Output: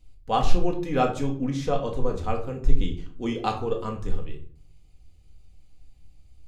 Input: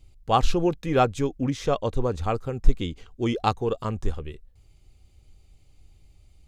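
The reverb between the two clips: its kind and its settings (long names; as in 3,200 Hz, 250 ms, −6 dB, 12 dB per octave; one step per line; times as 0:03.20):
rectangular room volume 460 cubic metres, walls furnished, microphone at 1.9 metres
level −5 dB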